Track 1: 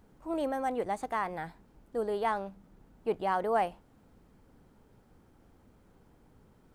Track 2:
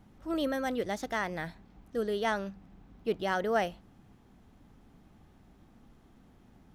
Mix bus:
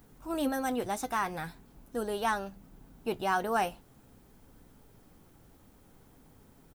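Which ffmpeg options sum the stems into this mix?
ffmpeg -i stem1.wav -i stem2.wav -filter_complex "[0:a]volume=0.5dB[link_01];[1:a]aecho=1:1:7.3:0.65,flanger=delay=0.5:depth=9.4:regen=63:speed=0.43:shape=sinusoidal,adelay=0.4,volume=-2.5dB[link_02];[link_01][link_02]amix=inputs=2:normalize=0,aemphasis=mode=production:type=50kf" out.wav

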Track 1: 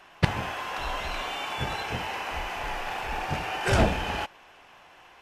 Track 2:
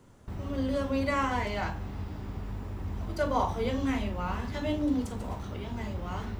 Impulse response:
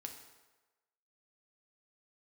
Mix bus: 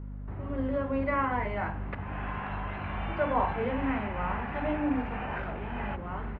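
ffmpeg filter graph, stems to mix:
-filter_complex "[0:a]acompressor=threshold=-34dB:ratio=5,highpass=580,adelay=1700,volume=1dB[link_01];[1:a]lowshelf=frequency=210:gain=-6,volume=1dB[link_02];[link_01][link_02]amix=inputs=2:normalize=0,lowpass=frequency=2200:width=0.5412,lowpass=frequency=2200:width=1.3066,aeval=exprs='val(0)+0.0126*(sin(2*PI*50*n/s)+sin(2*PI*2*50*n/s)/2+sin(2*PI*3*50*n/s)/3+sin(2*PI*4*50*n/s)/4+sin(2*PI*5*50*n/s)/5)':channel_layout=same"

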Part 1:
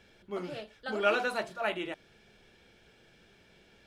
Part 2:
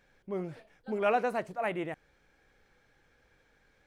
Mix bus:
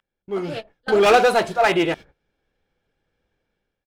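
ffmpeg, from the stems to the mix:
ffmpeg -i stem1.wav -i stem2.wav -filter_complex "[0:a]asoftclip=type=hard:threshold=-29.5dB,volume=2.5dB[link_01];[1:a]agate=range=-19dB:threshold=-58dB:ratio=16:detection=peak,adynamicsmooth=sensitivity=7.5:basefreq=1400,volume=-1,adelay=1,volume=1.5dB,asplit=2[link_02][link_03];[link_03]apad=whole_len=170227[link_04];[link_01][link_04]sidechaingate=range=-33dB:threshold=-46dB:ratio=16:detection=peak[link_05];[link_05][link_02]amix=inputs=2:normalize=0,dynaudnorm=framelen=210:gausssize=5:maxgain=12dB" out.wav

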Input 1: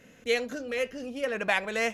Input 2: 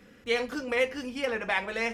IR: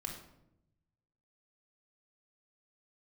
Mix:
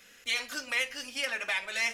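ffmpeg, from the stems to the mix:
-filter_complex "[0:a]equalizer=frequency=210:width_type=o:width=2.5:gain=-12,acrossover=split=140[link_01][link_02];[link_02]acompressor=threshold=-31dB:ratio=6[link_03];[link_01][link_03]amix=inputs=2:normalize=0,volume=-10dB,asplit=2[link_04][link_05];[link_05]volume=-4.5dB[link_06];[1:a]highpass=frequency=1300:poles=1,alimiter=limit=-21.5dB:level=0:latency=1:release=236,volume=-2dB[link_07];[2:a]atrim=start_sample=2205[link_08];[link_06][link_08]afir=irnorm=-1:irlink=0[link_09];[link_04][link_07][link_09]amix=inputs=3:normalize=0,highshelf=frequency=2300:gain=12"

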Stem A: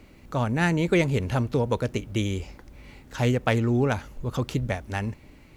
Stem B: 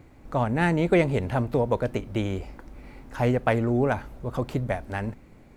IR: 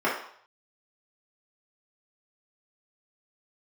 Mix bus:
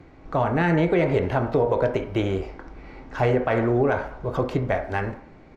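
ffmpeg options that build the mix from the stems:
-filter_complex "[0:a]acompressor=threshold=-29dB:ratio=4,volume=-10dB[link_01];[1:a]lowpass=frequency=5800:width=0.5412,lowpass=frequency=5800:width=1.3066,adelay=1.8,volume=2dB,asplit=3[link_02][link_03][link_04];[link_03]volume=-17dB[link_05];[link_04]apad=whole_len=245560[link_06];[link_01][link_06]sidechaingate=range=-33dB:threshold=-35dB:ratio=16:detection=peak[link_07];[2:a]atrim=start_sample=2205[link_08];[link_05][link_08]afir=irnorm=-1:irlink=0[link_09];[link_07][link_02][link_09]amix=inputs=3:normalize=0,alimiter=limit=-11.5dB:level=0:latency=1:release=64"

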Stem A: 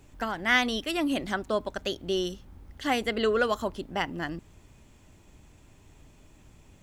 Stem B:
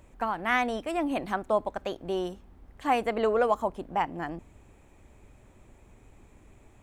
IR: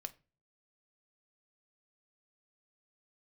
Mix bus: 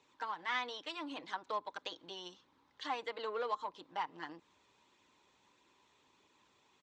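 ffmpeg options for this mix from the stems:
-filter_complex "[0:a]flanger=delay=0.3:depth=1.5:regen=-43:speed=1.6:shape=triangular,volume=-3dB[link_01];[1:a]aemphasis=mode=reproduction:type=bsi,adelay=6.7,volume=-13dB,asplit=2[link_02][link_03];[link_03]apad=whole_len=300858[link_04];[link_01][link_04]sidechaincompress=threshold=-44dB:ratio=8:attack=7.2:release=156[link_05];[link_05][link_02]amix=inputs=2:normalize=0,aeval=exprs='0.0596*(cos(1*acos(clip(val(0)/0.0596,-1,1)))-cos(1*PI/2))+0.00168*(cos(7*acos(clip(val(0)/0.0596,-1,1)))-cos(7*PI/2))':channel_layout=same,highpass=460,equalizer=frequency=670:width_type=q:width=4:gain=-10,equalizer=frequency=1000:width_type=q:width=4:gain=8,equalizer=frequency=3800:width_type=q:width=4:gain=8,lowpass=frequency=6600:width=0.5412,lowpass=frequency=6600:width=1.3066"

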